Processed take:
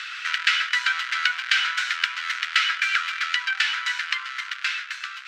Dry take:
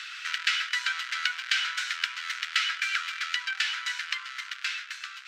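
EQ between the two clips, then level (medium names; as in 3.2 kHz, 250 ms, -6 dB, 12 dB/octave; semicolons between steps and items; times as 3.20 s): treble shelf 3.6 kHz -9 dB; +8.5 dB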